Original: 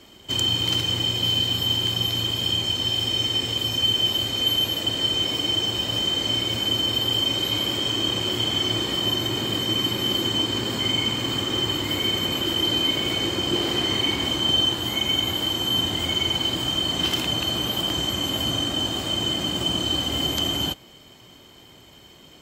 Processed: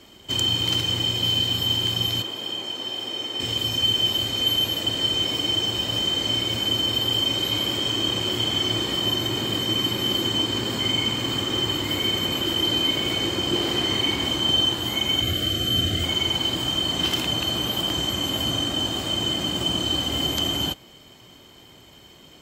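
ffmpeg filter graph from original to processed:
ffmpeg -i in.wav -filter_complex "[0:a]asettb=1/sr,asplit=3[link_01][link_02][link_03];[link_01]atrim=end=2.224[link_04];[link_02]atrim=start=2.22:end=3.4,asetpts=PTS-STARTPTS,afade=type=in:duration=0.004:curve=qsin,afade=type=out:start_time=1.176:duration=0.004:curve=qsin,highpass=330,highshelf=frequency=2100:gain=-9.5[link_05];[link_03]atrim=start=3.396[link_06];[link_04][link_05]acrossfade=duration=0.004:curve1=hsin:curve2=qsin[link_07];[link_07][link_06]acrossfade=duration=0.004:curve1=qsin:curve2=hsin,asettb=1/sr,asplit=3[link_08][link_09][link_10];[link_08]atrim=end=15.214[link_11];[link_09]atrim=start=15.21:end=16.04,asetpts=PTS-STARTPTS,afade=type=in:duration=0.004:curve=qsin,afade=type=out:start_time=0.826:duration=0.004:curve=qsin,asuperstop=centerf=930:order=8:qfactor=2.4,equalizer=frequency=81:width_type=o:width=1.4:gain=8.5[link_12];[link_10]atrim=start=16.036[link_13];[link_11][link_12]acrossfade=duration=0.004:curve1=hsin:curve2=qsin[link_14];[link_14][link_13]acrossfade=duration=0.004:curve1=qsin:curve2=hsin" out.wav

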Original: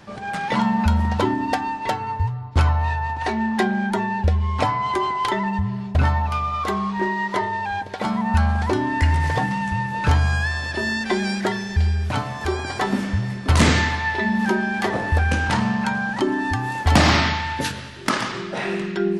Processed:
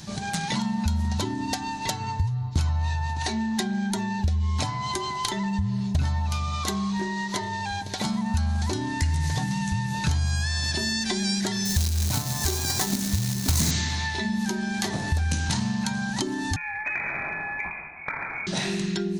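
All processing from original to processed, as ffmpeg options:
ffmpeg -i in.wav -filter_complex "[0:a]asettb=1/sr,asplit=3[link_01][link_02][link_03];[link_01]atrim=end=11.654[link_04];[link_02]atrim=start=11.65:end=13.71,asetpts=PTS-STARTPTS,afade=type=in:duration=0.004:curve=qsin,afade=type=out:start_time=2.056:duration=0.004:curve=qsin,equalizer=frequency=3100:width=2.7:gain=-7.5,acrusher=bits=2:mode=log:mix=0:aa=0.000001[link_05];[link_03]atrim=start=13.706[link_06];[link_04][link_05]acrossfade=duration=0.004:curve1=hsin:curve2=qsin[link_07];[link_07][link_06]acrossfade=duration=0.004:curve1=qsin:curve2=hsin,asettb=1/sr,asplit=3[link_08][link_09][link_10];[link_08]atrim=end=16.564[link_11];[link_09]atrim=start=16.56:end=18.47,asetpts=PTS-STARTPTS,afade=type=in:duration=0.004:curve=qsin,afade=type=out:start_time=1.906:duration=0.004:curve=qsin,lowshelf=frequency=110:gain=-12,lowpass=frequency=2200:width_type=q:width=0.5098,lowpass=frequency=2200:width_type=q:width=0.6013,lowpass=frequency=2200:width_type=q:width=0.9,lowpass=frequency=2200:width_type=q:width=2.563,afreqshift=-2600,acompressor=threshold=-26dB:ratio=1.5:attack=3.2:release=140:knee=1:detection=peak[link_12];[link_10]atrim=start=18.466[link_13];[link_11][link_12]acrossfade=duration=0.004:curve1=hsin:curve2=qsin[link_14];[link_14][link_13]acrossfade=duration=0.004:curve1=qsin:curve2=hsin,equalizer=frequency=160:width_type=o:width=0.33:gain=7,equalizer=frequency=500:width_type=o:width=0.33:gain=-8,equalizer=frequency=1250:width_type=o:width=0.33:gain=-5,equalizer=frequency=4000:width_type=o:width=0.33:gain=7,equalizer=frequency=6300:width_type=o:width=0.33:gain=6,acompressor=threshold=-26dB:ratio=6,bass=frequency=250:gain=7,treble=frequency=4000:gain=15,volume=-2dB" out.wav

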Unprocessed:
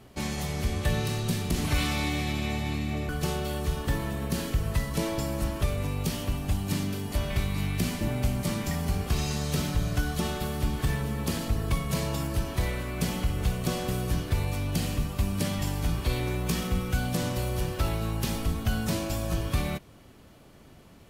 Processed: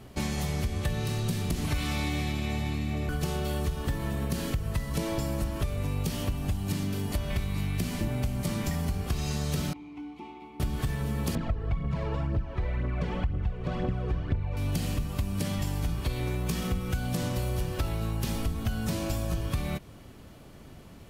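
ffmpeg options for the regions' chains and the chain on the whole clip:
ffmpeg -i in.wav -filter_complex "[0:a]asettb=1/sr,asplit=3[link_01][link_02][link_03];[link_01]atrim=end=9.734[link_04];[link_02]atrim=start=9.73:end=10.6,asetpts=PTS-STARTPTS,afade=type=in:duration=0.004:curve=qsin,afade=type=out:start_time=0.866:duration=0.004:curve=qsin,asplit=3[link_05][link_06][link_07];[link_05]bandpass=frequency=300:width_type=q:width=8,volume=0dB[link_08];[link_06]bandpass=frequency=870:width_type=q:width=8,volume=-6dB[link_09];[link_07]bandpass=frequency=2240:width_type=q:width=8,volume=-9dB[link_10];[link_08][link_09][link_10]amix=inputs=3:normalize=0,bass=frequency=250:gain=-13,treble=frequency=4000:gain=-4,aeval=exprs='val(0)+0.000398*(sin(2*PI*60*n/s)+sin(2*PI*2*60*n/s)/2+sin(2*PI*3*60*n/s)/3+sin(2*PI*4*60*n/s)/4+sin(2*PI*5*60*n/s)/5)':channel_layout=same[link_11];[link_03]atrim=start=10.596[link_12];[link_04][link_11]acrossfade=duration=0.004:curve1=hsin:curve2=qsin[link_13];[link_13][link_12]acrossfade=duration=0.004:curve1=qsin:curve2=hsin,asettb=1/sr,asplit=3[link_14][link_15][link_16];[link_14]atrim=end=11.354[link_17];[link_15]atrim=start=11.35:end=14.57,asetpts=PTS-STARTPTS,afade=type=in:duration=0.004:curve=qsin,afade=type=out:start_time=3.216:duration=0.004:curve=qsin,lowpass=2100,aphaser=in_gain=1:out_gain=1:delay=2.6:decay=0.55:speed=2:type=triangular[link_18];[link_16]atrim=start=14.566[link_19];[link_17][link_18]acrossfade=duration=0.004:curve1=hsin:curve2=qsin[link_20];[link_20][link_19]acrossfade=duration=0.004:curve1=qsin:curve2=hsin,lowshelf=frequency=200:gain=4,acompressor=threshold=-28dB:ratio=6,volume=2dB" out.wav

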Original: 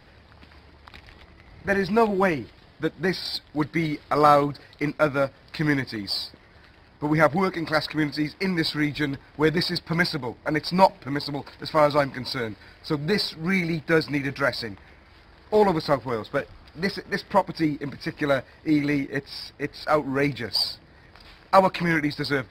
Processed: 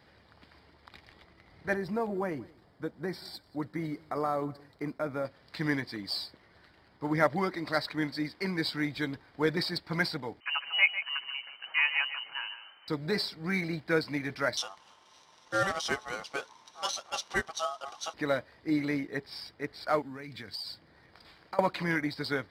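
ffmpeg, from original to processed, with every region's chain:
ffmpeg -i in.wav -filter_complex "[0:a]asettb=1/sr,asplit=3[link_01][link_02][link_03];[link_01]atrim=end=1.744[link_04];[link_02]atrim=start=1.74:end=5.25,asetpts=PTS-STARTPTS,afade=type=in:duration=0.004:curve=qsin,afade=type=out:start_time=3.506:duration=0.004:curve=qsin,acompressor=threshold=-22dB:ratio=2:attack=3.2:release=140:knee=1:detection=peak,equalizer=frequency=3300:width_type=o:width=1.9:gain=-10,aecho=1:1:183:0.0668,atrim=end_sample=154791[link_05];[link_03]atrim=start=5.246[link_06];[link_04][link_05]acrossfade=duration=0.004:curve1=hsin:curve2=qsin[link_07];[link_07][link_06]acrossfade=duration=0.004:curve1=qsin:curve2=hsin,asettb=1/sr,asplit=3[link_08][link_09][link_10];[link_08]atrim=end=10.404[link_11];[link_09]atrim=start=10.4:end=12.88,asetpts=PTS-STARTPTS,afade=type=in:duration=0.004:curve=qsin,afade=type=out:start_time=2.476:duration=0.004:curve=qsin,aecho=1:1:149:0.282,atrim=end_sample=109368,lowpass=frequency=2600:width_type=q:width=0.5098,lowpass=frequency=2600:width_type=q:width=0.6013,lowpass=frequency=2600:width_type=q:width=0.9,lowpass=frequency=2600:width_type=q:width=2.563,afreqshift=-3100[link_12];[link_10]atrim=start=12.876[link_13];[link_11][link_12]acrossfade=duration=0.004:curve1=hsin:curve2=qsin[link_14];[link_14][link_13]acrossfade=duration=0.004:curve1=qsin:curve2=hsin,asettb=1/sr,asplit=3[link_15][link_16][link_17];[link_15]atrim=end=14.574[link_18];[link_16]atrim=start=14.57:end=18.14,asetpts=PTS-STARTPTS,afade=type=in:duration=0.004:curve=qsin,afade=type=out:start_time=3.566:duration=0.004:curve=qsin,lowpass=frequency=7200:width_type=q:width=1.8,aemphasis=mode=production:type=75fm,aeval=exprs='val(0)*sin(2*PI*970*n/s)':channel_layout=same[link_19];[link_17]atrim=start=18.136[link_20];[link_18][link_19]acrossfade=duration=0.004:curve1=hsin:curve2=qsin[link_21];[link_21][link_20]acrossfade=duration=0.004:curve1=qsin:curve2=hsin,asettb=1/sr,asplit=3[link_22][link_23][link_24];[link_22]atrim=end=20.024[link_25];[link_23]atrim=start=20.02:end=21.59,asetpts=PTS-STARTPTS,afade=type=in:duration=0.004:curve=qsin,afade=type=out:start_time=1.566:duration=0.004:curve=qsin,acompressor=threshold=-28dB:ratio=12:attack=3.2:release=140:knee=1:detection=peak,adynamicequalizer=threshold=0.00355:dfrequency=600:dqfactor=0.75:tfrequency=600:tqfactor=0.75:attack=5:release=100:ratio=0.375:range=3.5:mode=cutabove:tftype=bell,highpass=41[link_26];[link_24]atrim=start=21.586[link_27];[link_25][link_26]acrossfade=duration=0.004:curve1=hsin:curve2=qsin[link_28];[link_28][link_27]acrossfade=duration=0.004:curve1=qsin:curve2=hsin,highpass=frequency=130:poles=1,bandreject=frequency=2600:width=12,volume=-6.5dB" out.wav

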